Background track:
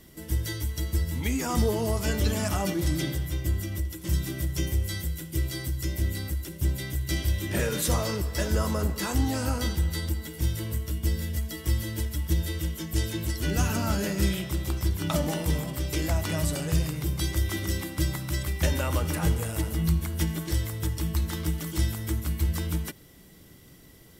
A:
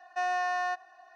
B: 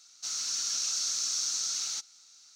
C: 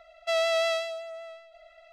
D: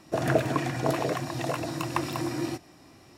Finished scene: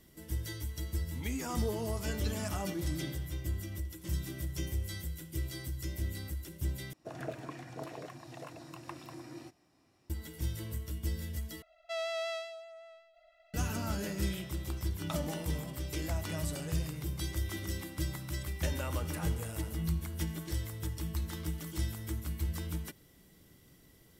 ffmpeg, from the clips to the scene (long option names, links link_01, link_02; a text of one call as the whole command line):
ffmpeg -i bed.wav -i cue0.wav -i cue1.wav -i cue2.wav -i cue3.wav -filter_complex "[0:a]volume=-8.5dB,asplit=3[link_01][link_02][link_03];[link_01]atrim=end=6.934[link_04];[4:a]atrim=end=3.17,asetpts=PTS-STARTPTS,volume=-16.5dB[link_05];[link_02]atrim=start=10.096:end=11.624[link_06];[3:a]atrim=end=1.92,asetpts=PTS-STARTPTS,volume=-10.5dB[link_07];[link_03]atrim=start=13.536[link_08];[link_04][link_05]acrossfade=duration=0.004:curve1=hsin:curve2=hsin[link_09];[link_09][link_06]acrossfade=duration=0.004:curve1=hsin:curve2=hsin[link_10];[link_10][link_07]acrossfade=duration=0.004:curve1=hsin:curve2=hsin[link_11];[link_11][link_08]acrossfade=duration=0.004:curve1=hsin:curve2=hsin" out.wav